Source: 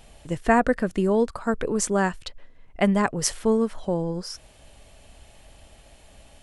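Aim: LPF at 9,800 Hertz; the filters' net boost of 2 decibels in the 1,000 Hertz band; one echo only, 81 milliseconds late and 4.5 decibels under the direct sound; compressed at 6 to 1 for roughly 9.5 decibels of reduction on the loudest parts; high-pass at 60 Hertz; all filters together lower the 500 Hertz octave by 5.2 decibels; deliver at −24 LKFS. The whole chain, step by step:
high-pass filter 60 Hz
low-pass filter 9,800 Hz
parametric band 500 Hz −8 dB
parametric band 1,000 Hz +5.5 dB
downward compressor 6 to 1, threshold −24 dBFS
single-tap delay 81 ms −4.5 dB
level +5 dB

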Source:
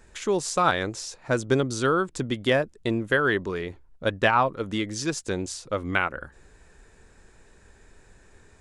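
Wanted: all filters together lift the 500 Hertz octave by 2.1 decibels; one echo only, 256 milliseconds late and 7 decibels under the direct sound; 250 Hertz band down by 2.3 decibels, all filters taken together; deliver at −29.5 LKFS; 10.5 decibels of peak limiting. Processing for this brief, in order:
parametric band 250 Hz −5 dB
parametric band 500 Hz +4 dB
brickwall limiter −16.5 dBFS
single-tap delay 256 ms −7 dB
level −1.5 dB

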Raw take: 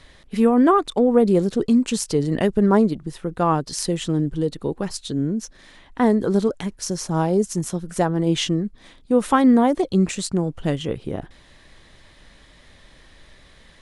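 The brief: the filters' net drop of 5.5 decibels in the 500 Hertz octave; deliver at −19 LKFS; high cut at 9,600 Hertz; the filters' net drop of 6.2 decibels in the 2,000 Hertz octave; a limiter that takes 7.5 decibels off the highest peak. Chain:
low-pass filter 9,600 Hz
parametric band 500 Hz −6.5 dB
parametric band 2,000 Hz −8 dB
level +6.5 dB
brickwall limiter −8.5 dBFS

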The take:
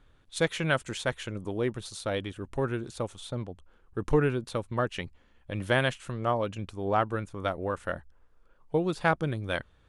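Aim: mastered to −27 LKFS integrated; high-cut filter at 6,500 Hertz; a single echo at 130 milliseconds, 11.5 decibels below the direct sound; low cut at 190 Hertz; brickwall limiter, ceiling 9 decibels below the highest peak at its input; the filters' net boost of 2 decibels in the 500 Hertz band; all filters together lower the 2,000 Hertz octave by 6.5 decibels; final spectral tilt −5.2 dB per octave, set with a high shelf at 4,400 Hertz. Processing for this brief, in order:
high-pass filter 190 Hz
low-pass filter 6,500 Hz
parametric band 500 Hz +3 dB
parametric band 2,000 Hz −8.5 dB
high-shelf EQ 4,400 Hz −6.5 dB
brickwall limiter −20 dBFS
single-tap delay 130 ms −11.5 dB
level +7 dB

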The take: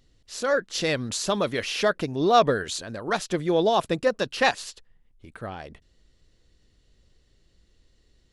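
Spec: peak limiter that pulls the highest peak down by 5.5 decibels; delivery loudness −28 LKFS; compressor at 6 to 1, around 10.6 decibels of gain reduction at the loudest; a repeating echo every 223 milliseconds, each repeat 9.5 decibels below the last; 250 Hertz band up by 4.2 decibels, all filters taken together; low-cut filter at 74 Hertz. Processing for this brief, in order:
high-pass filter 74 Hz
parametric band 250 Hz +6 dB
downward compressor 6 to 1, threshold −24 dBFS
brickwall limiter −20 dBFS
repeating echo 223 ms, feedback 33%, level −9.5 dB
level +2.5 dB

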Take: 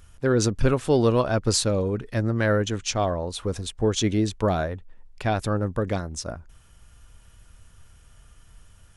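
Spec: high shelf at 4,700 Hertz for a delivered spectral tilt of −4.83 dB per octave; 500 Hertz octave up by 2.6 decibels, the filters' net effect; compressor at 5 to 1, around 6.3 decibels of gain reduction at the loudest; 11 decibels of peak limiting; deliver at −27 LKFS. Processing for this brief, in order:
parametric band 500 Hz +3 dB
high-shelf EQ 4,700 Hz +5.5 dB
downward compressor 5 to 1, threshold −21 dBFS
level +5.5 dB
brickwall limiter −18 dBFS

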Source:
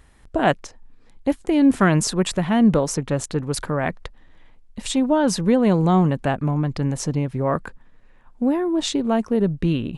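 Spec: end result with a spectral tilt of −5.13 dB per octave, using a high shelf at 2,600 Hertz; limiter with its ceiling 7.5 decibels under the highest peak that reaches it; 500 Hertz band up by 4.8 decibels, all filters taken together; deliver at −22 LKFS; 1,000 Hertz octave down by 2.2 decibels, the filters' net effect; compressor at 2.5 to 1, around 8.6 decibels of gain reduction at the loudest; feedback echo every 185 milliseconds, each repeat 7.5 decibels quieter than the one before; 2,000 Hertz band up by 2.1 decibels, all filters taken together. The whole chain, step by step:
parametric band 500 Hz +8 dB
parametric band 1,000 Hz −9 dB
parametric band 2,000 Hz +4 dB
high-shelf EQ 2,600 Hz +4 dB
downward compressor 2.5 to 1, threshold −23 dBFS
brickwall limiter −17 dBFS
repeating echo 185 ms, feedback 42%, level −7.5 dB
level +4 dB

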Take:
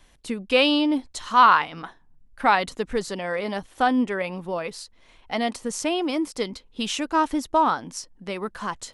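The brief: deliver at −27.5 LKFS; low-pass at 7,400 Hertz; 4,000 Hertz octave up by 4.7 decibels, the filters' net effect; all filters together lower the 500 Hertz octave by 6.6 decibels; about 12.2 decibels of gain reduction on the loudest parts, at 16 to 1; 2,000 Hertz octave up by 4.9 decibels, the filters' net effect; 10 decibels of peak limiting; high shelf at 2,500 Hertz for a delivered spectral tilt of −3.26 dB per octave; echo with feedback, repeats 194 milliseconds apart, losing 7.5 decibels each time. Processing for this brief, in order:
low-pass filter 7,400 Hz
parametric band 500 Hz −8.5 dB
parametric band 2,000 Hz +8 dB
high-shelf EQ 2,500 Hz −5.5 dB
parametric band 4,000 Hz +8 dB
downward compressor 16 to 1, threshold −21 dBFS
brickwall limiter −19.5 dBFS
repeating echo 194 ms, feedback 42%, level −7.5 dB
level +2 dB

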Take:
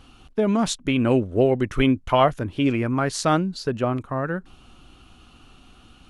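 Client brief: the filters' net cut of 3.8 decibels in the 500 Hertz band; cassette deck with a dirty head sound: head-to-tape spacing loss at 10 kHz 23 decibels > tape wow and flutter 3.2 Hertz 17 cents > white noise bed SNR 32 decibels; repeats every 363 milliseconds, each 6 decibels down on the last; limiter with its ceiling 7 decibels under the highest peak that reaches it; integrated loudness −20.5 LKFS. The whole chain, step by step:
parametric band 500 Hz −3.5 dB
brickwall limiter −14.5 dBFS
head-to-tape spacing loss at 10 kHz 23 dB
repeating echo 363 ms, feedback 50%, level −6 dB
tape wow and flutter 3.2 Hz 17 cents
white noise bed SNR 32 dB
level +5.5 dB

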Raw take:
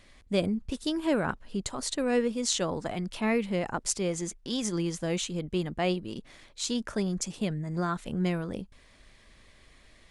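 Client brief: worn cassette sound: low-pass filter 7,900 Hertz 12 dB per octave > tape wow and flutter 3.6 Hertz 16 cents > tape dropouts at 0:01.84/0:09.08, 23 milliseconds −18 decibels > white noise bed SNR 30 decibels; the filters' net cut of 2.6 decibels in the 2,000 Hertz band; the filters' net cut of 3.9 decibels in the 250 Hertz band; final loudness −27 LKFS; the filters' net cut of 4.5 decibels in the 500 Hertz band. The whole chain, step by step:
low-pass filter 7,900 Hz 12 dB per octave
parametric band 250 Hz −4.5 dB
parametric band 500 Hz −4 dB
parametric band 2,000 Hz −3 dB
tape wow and flutter 3.6 Hz 16 cents
tape dropouts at 0:01.84/0:09.08, 23 ms −18 dB
white noise bed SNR 30 dB
level +7 dB

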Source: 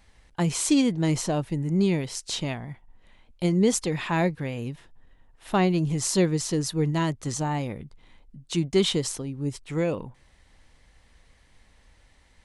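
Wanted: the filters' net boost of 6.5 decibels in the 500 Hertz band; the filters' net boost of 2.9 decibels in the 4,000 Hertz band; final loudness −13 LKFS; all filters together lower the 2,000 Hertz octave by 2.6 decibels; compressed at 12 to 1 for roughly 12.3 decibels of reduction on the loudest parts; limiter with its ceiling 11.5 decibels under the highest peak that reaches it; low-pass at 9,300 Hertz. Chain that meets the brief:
low-pass filter 9,300 Hz
parametric band 500 Hz +8.5 dB
parametric band 2,000 Hz −5 dB
parametric band 4,000 Hz +5 dB
downward compressor 12 to 1, threshold −24 dBFS
level +19 dB
brickwall limiter −4 dBFS

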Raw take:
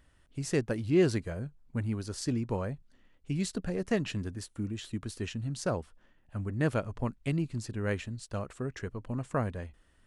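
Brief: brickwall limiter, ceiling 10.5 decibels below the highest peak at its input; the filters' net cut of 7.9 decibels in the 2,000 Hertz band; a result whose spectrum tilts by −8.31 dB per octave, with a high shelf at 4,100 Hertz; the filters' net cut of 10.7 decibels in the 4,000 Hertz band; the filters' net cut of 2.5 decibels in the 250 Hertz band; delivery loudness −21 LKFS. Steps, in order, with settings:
parametric band 250 Hz −3.5 dB
parametric band 2,000 Hz −7 dB
parametric band 4,000 Hz −8.5 dB
high-shelf EQ 4,100 Hz −6 dB
level +18 dB
brickwall limiter −9.5 dBFS

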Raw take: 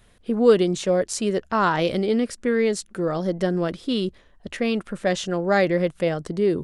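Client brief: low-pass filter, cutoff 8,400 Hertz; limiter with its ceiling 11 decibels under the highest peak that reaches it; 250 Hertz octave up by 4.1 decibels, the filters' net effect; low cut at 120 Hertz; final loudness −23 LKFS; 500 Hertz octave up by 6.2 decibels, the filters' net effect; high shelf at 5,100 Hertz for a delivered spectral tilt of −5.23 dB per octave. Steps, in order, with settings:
high-pass filter 120 Hz
low-pass filter 8,400 Hz
parametric band 250 Hz +4 dB
parametric band 500 Hz +6 dB
high-shelf EQ 5,100 Hz +8.5 dB
level −2 dB
brickwall limiter −12.5 dBFS

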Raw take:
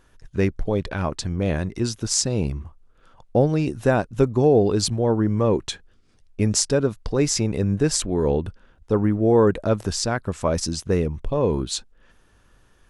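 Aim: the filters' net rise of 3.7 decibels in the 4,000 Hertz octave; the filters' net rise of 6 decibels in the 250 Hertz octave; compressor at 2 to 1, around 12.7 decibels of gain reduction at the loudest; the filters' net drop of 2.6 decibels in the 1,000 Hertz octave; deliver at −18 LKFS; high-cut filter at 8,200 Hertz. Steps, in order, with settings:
low-pass filter 8,200 Hz
parametric band 250 Hz +8 dB
parametric band 1,000 Hz −4.5 dB
parametric band 4,000 Hz +5.5 dB
downward compressor 2 to 1, threshold −33 dBFS
level +11.5 dB

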